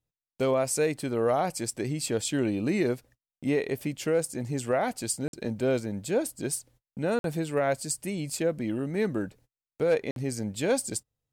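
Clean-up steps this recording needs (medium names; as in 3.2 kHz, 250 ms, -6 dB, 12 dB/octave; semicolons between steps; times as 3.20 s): interpolate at 5.28/7.19/10.11 s, 52 ms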